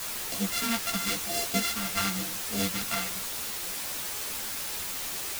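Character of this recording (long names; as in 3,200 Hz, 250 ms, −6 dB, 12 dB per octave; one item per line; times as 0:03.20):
a buzz of ramps at a fixed pitch in blocks of 64 samples
phaser sweep stages 2, 0.92 Hz, lowest notch 410–1,400 Hz
a quantiser's noise floor 6 bits, dither triangular
a shimmering, thickened sound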